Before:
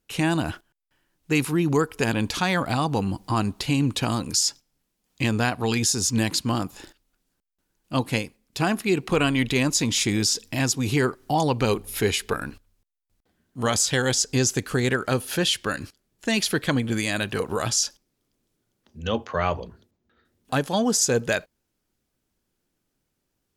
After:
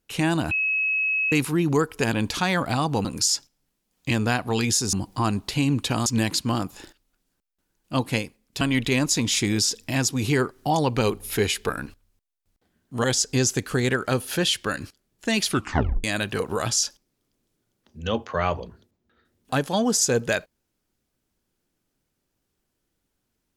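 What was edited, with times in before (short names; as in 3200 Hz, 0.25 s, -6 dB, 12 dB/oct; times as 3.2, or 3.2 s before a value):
0.51–1.32 bleep 2570 Hz -20.5 dBFS
3.05–4.18 move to 6.06
8.61–9.25 cut
13.68–14.04 cut
16.47 tape stop 0.57 s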